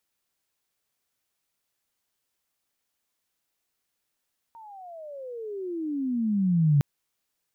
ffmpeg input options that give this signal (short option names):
-f lavfi -i "aevalsrc='pow(10,(-16+27.5*(t/2.26-1))/20)*sin(2*PI*932*2.26/(-33*log(2)/12)*(exp(-33*log(2)/12*t/2.26)-1))':d=2.26:s=44100"